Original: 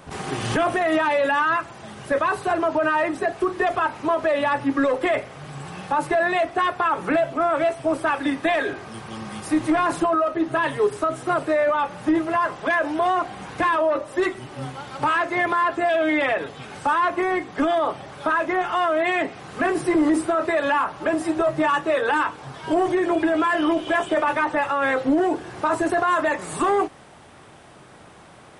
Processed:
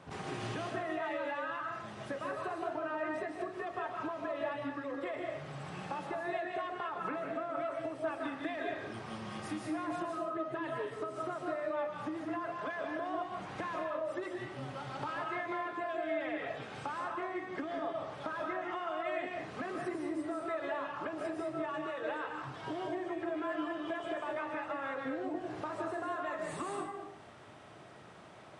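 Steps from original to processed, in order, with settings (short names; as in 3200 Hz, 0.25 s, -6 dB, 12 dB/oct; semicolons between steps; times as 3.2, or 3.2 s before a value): HPF 78 Hz; bell 110 Hz +3.5 dB 0.38 oct; compressor 10:1, threshold -28 dBFS, peak gain reduction 13 dB; air absorption 60 m; reverb RT60 0.55 s, pre-delay 0.11 s, DRR 0.5 dB; gain -9 dB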